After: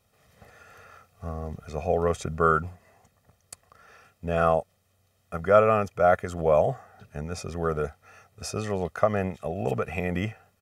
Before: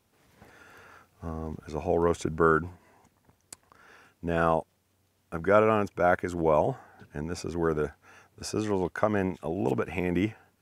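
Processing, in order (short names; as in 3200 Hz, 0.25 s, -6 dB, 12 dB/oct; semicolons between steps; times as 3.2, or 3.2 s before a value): comb 1.6 ms, depth 70%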